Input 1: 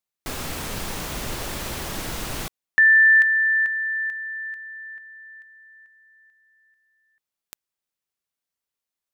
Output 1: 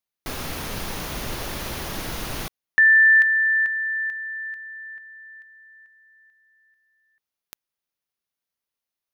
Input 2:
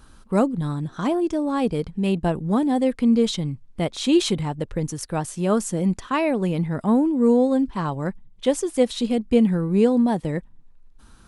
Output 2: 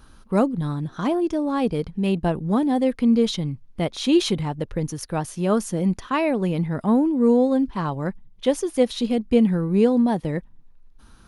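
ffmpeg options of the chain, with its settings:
ffmpeg -i in.wav -af "equalizer=frequency=7800:width=6.1:gain=-11.5" out.wav

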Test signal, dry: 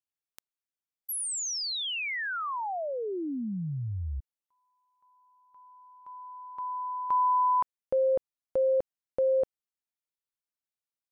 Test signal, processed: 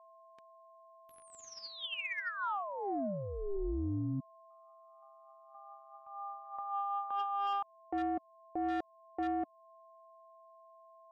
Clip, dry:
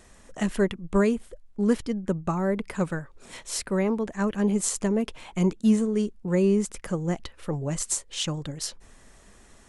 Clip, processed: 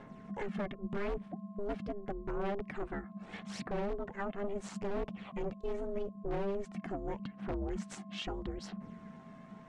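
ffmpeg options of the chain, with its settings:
ffmpeg -i in.wav -filter_complex "[0:a]aphaser=in_gain=1:out_gain=1:delay=2.1:decay=0.51:speed=0.8:type=sinusoidal,asplit=2[link_01][link_02];[link_02]aeval=exprs='(mod(5.96*val(0)+1,2)-1)/5.96':channel_layout=same,volume=-5.5dB[link_03];[link_01][link_03]amix=inputs=2:normalize=0,lowpass=2400,aeval=exprs='val(0)+0.00355*sin(2*PI*860*n/s)':channel_layout=same,aeval=exprs='val(0)*sin(2*PI*200*n/s)':channel_layout=same,asoftclip=type=tanh:threshold=-16dB,alimiter=level_in=0.5dB:limit=-24dB:level=0:latency=1:release=296,volume=-0.5dB,volume=-4.5dB" out.wav

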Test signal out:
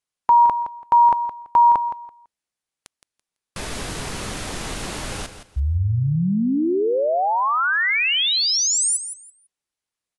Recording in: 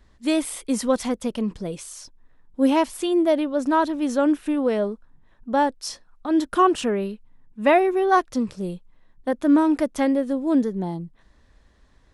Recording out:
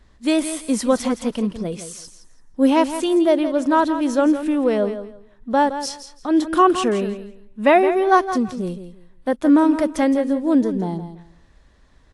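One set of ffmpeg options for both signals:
ffmpeg -i in.wav -filter_complex "[0:a]asplit=2[link_01][link_02];[link_02]aecho=0:1:167|334|501:0.282|0.0592|0.0124[link_03];[link_01][link_03]amix=inputs=2:normalize=0,volume=3dB" -ar 24000 -c:a aac -b:a 64k out.aac

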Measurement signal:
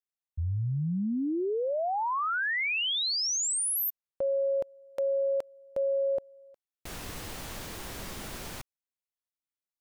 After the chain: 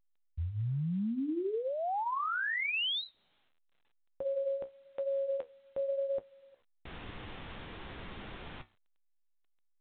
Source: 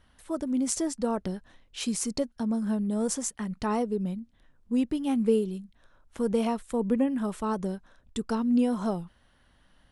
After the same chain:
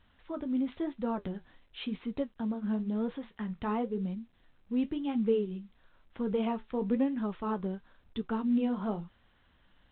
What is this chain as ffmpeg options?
ffmpeg -i in.wav -af "equalizer=frequency=600:width=5.7:gain=-3.5,flanger=delay=9.3:depth=6.4:regen=-54:speed=0.97:shape=sinusoidal" -ar 8000 -c:a pcm_alaw out.wav

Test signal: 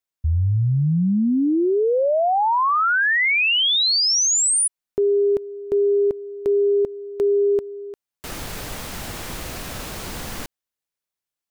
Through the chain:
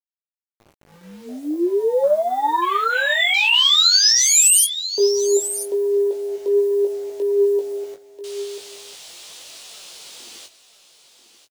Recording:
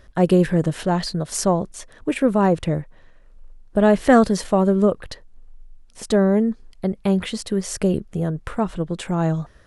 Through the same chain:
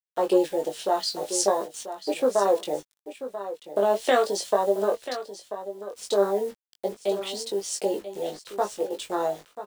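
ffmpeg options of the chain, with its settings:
ffmpeg -i in.wav -filter_complex "[0:a]lowpass=frequency=10000:width=0.5412,lowpass=frequency=10000:width=1.3066,afwtdn=0.0708,highpass=frequency=400:width=0.5412,highpass=frequency=400:width=1.3066,highshelf=frequency=2400:width_type=q:width=1.5:gain=11,acompressor=threshold=-18dB:ratio=6:attack=8.8:release=205:knee=6:detection=peak,flanger=delay=2.9:depth=9.2:regen=57:speed=0.42:shape=triangular,acrusher=bits=8:mix=0:aa=0.000001,asplit=2[link_01][link_02];[link_02]adelay=20,volume=-4.5dB[link_03];[link_01][link_03]amix=inputs=2:normalize=0,aecho=1:1:988:0.251,adynamicequalizer=threshold=0.0112:dfrequency=4300:dqfactor=0.7:tfrequency=4300:tqfactor=0.7:attack=5:release=100:ratio=0.375:range=2:mode=boostabove:tftype=highshelf,volume=5dB" out.wav

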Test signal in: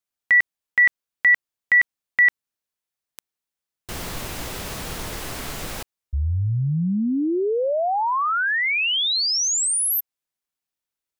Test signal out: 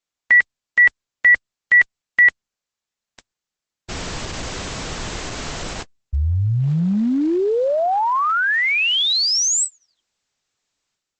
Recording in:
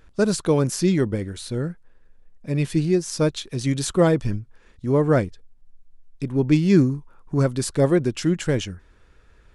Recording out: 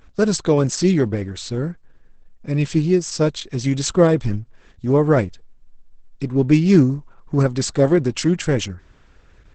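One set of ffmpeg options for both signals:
ffmpeg -i in.wav -af "volume=3.5dB" -ar 48000 -c:a libopus -b:a 10k out.opus

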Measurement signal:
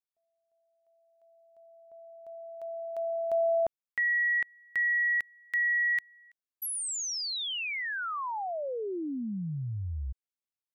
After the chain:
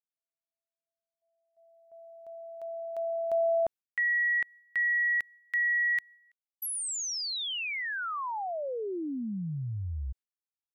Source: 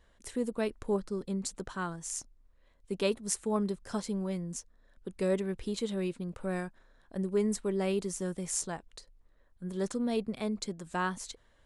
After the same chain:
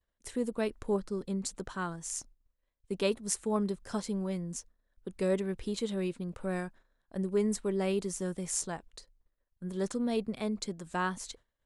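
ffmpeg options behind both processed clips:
ffmpeg -i in.wav -af "agate=range=-28dB:threshold=-52dB:ratio=3:release=173:detection=peak" out.wav

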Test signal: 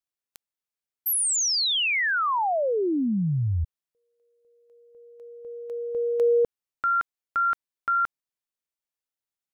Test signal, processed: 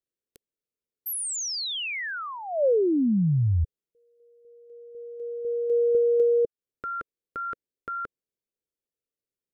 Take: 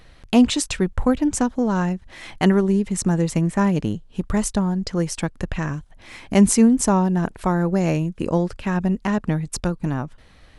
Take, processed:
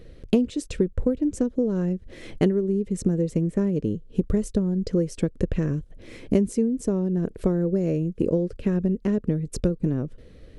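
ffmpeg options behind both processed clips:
ffmpeg -i in.wav -af "lowshelf=frequency=630:width_type=q:width=3:gain=10,acompressor=threshold=-13dB:ratio=12:attack=35:release=725:knee=1:detection=peak,volume=-6.5dB" out.wav

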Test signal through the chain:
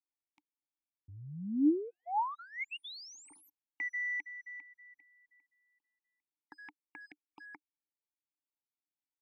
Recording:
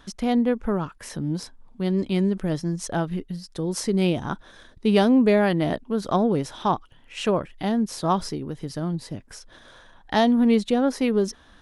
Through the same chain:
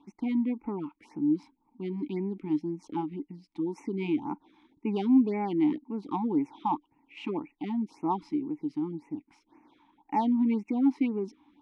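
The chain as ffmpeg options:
ffmpeg -i in.wav -filter_complex "[0:a]asplit=2[link_01][link_02];[link_02]adynamicsmooth=sensitivity=5:basefreq=4000,volume=1dB[link_03];[link_01][link_03]amix=inputs=2:normalize=0,asoftclip=type=tanh:threshold=-3dB,asplit=3[link_04][link_05][link_06];[link_04]bandpass=frequency=300:width_type=q:width=8,volume=0dB[link_07];[link_05]bandpass=frequency=870:width_type=q:width=8,volume=-6dB[link_08];[link_06]bandpass=frequency=2240:width_type=q:width=8,volume=-9dB[link_09];[link_07][link_08][link_09]amix=inputs=3:normalize=0,bass=frequency=250:gain=-2,treble=frequency=4000:gain=3,afftfilt=real='re*(1-between(b*sr/1024,480*pow(4100/480,0.5+0.5*sin(2*PI*1.9*pts/sr))/1.41,480*pow(4100/480,0.5+0.5*sin(2*PI*1.9*pts/sr))*1.41))':imag='im*(1-between(b*sr/1024,480*pow(4100/480,0.5+0.5*sin(2*PI*1.9*pts/sr))/1.41,480*pow(4100/480,0.5+0.5*sin(2*PI*1.9*pts/sr))*1.41))':win_size=1024:overlap=0.75" out.wav

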